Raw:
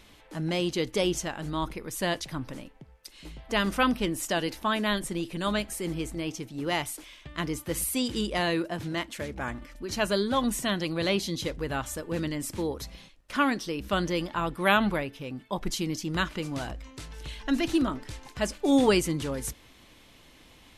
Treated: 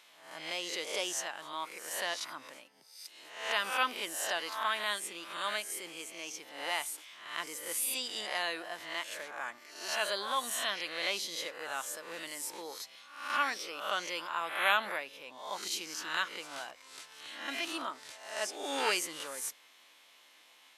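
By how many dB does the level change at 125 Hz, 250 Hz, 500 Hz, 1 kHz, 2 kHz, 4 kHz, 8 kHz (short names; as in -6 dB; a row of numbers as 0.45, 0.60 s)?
under -30 dB, -21.5 dB, -11.0 dB, -4.0 dB, -2.0 dB, -2.0 dB, -1.5 dB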